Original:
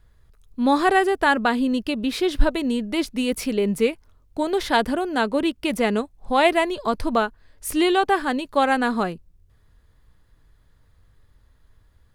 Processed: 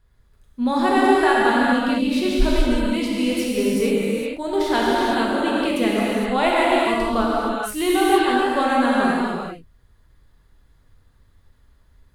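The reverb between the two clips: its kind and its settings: non-linear reverb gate 0.49 s flat, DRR -6 dB; gain -5 dB

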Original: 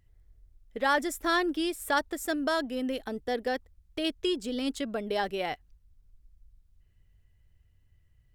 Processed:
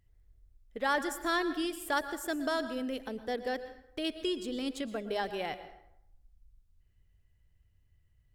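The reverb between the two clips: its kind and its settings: plate-style reverb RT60 0.77 s, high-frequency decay 0.65×, pre-delay 0.1 s, DRR 11.5 dB; gain -4 dB

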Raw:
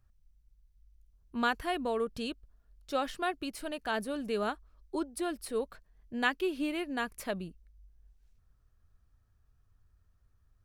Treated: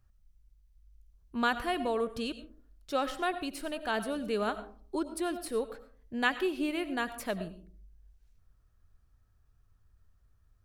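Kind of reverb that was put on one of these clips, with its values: digital reverb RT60 0.45 s, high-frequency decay 0.35×, pre-delay 55 ms, DRR 12 dB; gain +1 dB

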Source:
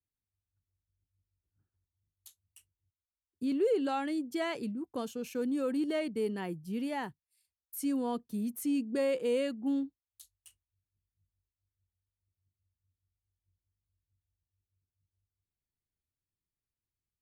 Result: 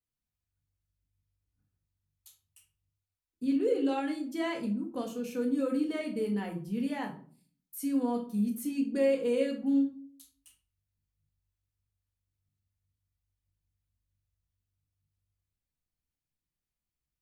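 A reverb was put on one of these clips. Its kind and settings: shoebox room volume 380 m³, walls furnished, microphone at 1.9 m; gain -3 dB

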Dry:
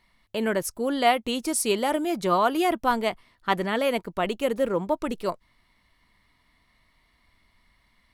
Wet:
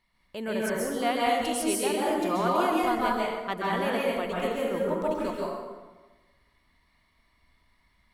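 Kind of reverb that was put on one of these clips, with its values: plate-style reverb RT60 1.3 s, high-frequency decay 0.65×, pre-delay 0.12 s, DRR -5.5 dB; gain -8.5 dB

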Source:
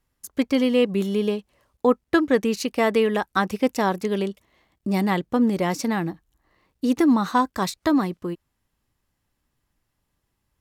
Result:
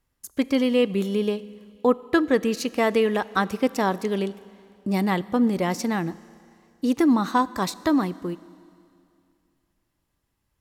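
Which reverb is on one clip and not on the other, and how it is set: Schroeder reverb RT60 2.5 s, combs from 26 ms, DRR 18.5 dB; gain -1 dB

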